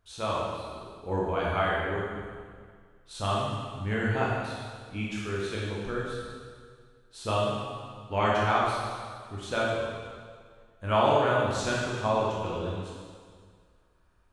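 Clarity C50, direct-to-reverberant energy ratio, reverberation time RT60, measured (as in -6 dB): -1.5 dB, -5.5 dB, 1.9 s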